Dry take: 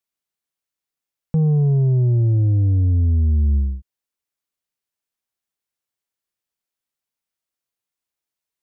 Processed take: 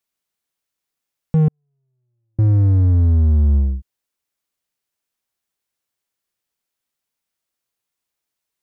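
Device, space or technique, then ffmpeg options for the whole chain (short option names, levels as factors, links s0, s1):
parallel distortion: -filter_complex "[0:a]asplit=2[s0][s1];[s1]asoftclip=type=hard:threshold=0.0398,volume=0.398[s2];[s0][s2]amix=inputs=2:normalize=0,asettb=1/sr,asplit=3[s3][s4][s5];[s3]atrim=end=1.484[s6];[s4]atrim=start=1.48:end=2.39,asetpts=PTS-STARTPTS,afade=t=in:d=0.004:c=qsin,afade=t=out:st=0.906:d=0.004:c=qsin,agate=range=0.00141:threshold=0.447:ratio=16:detection=peak[s7];[s5]atrim=start=2.386[s8];[s6][s7]acrossfade=d=0.004:c1=hsin:c2=qsin[s9];[s9][s8]acrossfade=d=0.004:c1=qsin:c2=hsin,volume=1.26"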